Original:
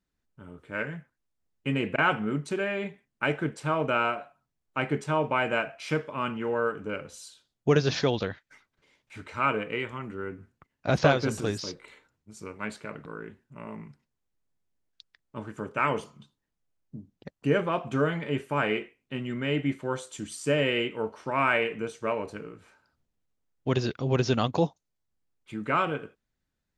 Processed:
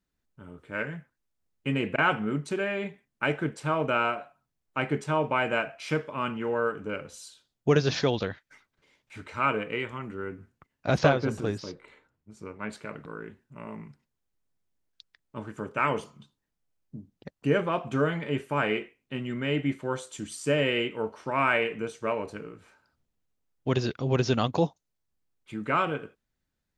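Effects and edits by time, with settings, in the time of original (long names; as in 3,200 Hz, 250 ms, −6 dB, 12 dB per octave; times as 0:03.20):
0:11.09–0:12.73: high-shelf EQ 3,300 Hz −11.5 dB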